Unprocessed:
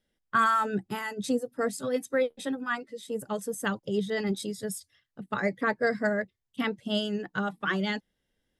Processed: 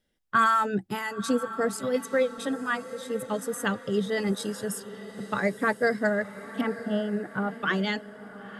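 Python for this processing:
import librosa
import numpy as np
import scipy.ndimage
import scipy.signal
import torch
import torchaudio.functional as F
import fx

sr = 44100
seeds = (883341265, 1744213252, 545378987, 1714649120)

p1 = fx.lowpass(x, sr, hz=1400.0, slope=12, at=(6.61, 7.54))
p2 = p1 + fx.echo_diffused(p1, sr, ms=958, feedback_pct=47, wet_db=-14, dry=0)
y = F.gain(torch.from_numpy(p2), 2.0).numpy()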